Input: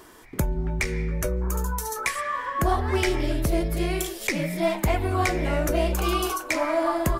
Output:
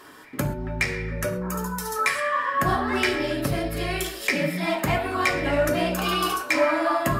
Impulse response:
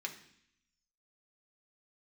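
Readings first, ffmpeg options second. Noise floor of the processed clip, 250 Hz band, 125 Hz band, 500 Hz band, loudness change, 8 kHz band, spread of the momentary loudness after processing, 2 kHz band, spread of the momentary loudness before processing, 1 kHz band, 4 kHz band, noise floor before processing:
-37 dBFS, +0.5 dB, -2.5 dB, +1.0 dB, +1.5 dB, -1.5 dB, 7 LU, +5.0 dB, 4 LU, +2.5 dB, +4.0 dB, -40 dBFS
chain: -filter_complex "[1:a]atrim=start_sample=2205,atrim=end_sample=4410,asetrate=31752,aresample=44100[a];[0:a][a]afir=irnorm=-1:irlink=0,volume=2dB"

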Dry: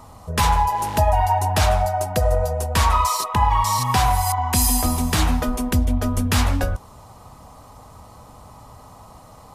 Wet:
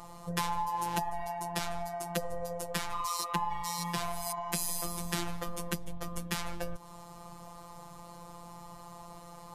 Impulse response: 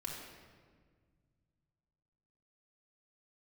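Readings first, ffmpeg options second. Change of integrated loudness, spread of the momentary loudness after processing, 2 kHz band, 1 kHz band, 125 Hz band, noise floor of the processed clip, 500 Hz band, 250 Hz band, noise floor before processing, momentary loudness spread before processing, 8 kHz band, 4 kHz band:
-15.5 dB, 16 LU, -12.5 dB, -15.0 dB, -20.5 dB, -49 dBFS, -14.0 dB, -14.5 dB, -45 dBFS, 4 LU, -12.5 dB, -12.0 dB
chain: -af "acompressor=threshold=-26dB:ratio=6,afftfilt=real='hypot(re,im)*cos(PI*b)':imag='0':win_size=1024:overlap=0.75"

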